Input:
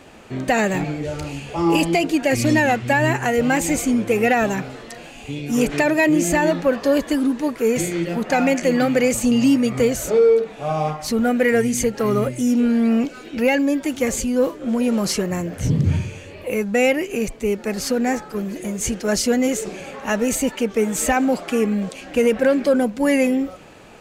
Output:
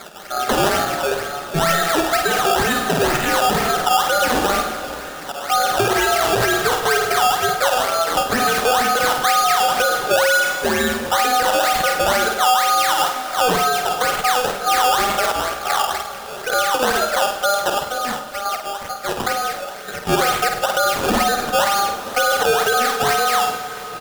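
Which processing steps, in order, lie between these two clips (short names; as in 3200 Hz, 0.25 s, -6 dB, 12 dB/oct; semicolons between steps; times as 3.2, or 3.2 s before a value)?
Wiener smoothing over 15 samples; HPF 200 Hz 24 dB/oct; high shelf 6800 Hz -10.5 dB; comb 4.9 ms, depth 34%; ring modulator 1000 Hz; decimation with a swept rate 15×, swing 100% 2.1 Hz; 17.74–20.07 chopper 1.4 Hz, depth 65%, duty 15%; flutter echo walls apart 8.6 m, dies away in 0.39 s; reverb RT60 3.8 s, pre-delay 88 ms, DRR 14 dB; maximiser +15.5 dB; mismatched tape noise reduction encoder only; gain -7.5 dB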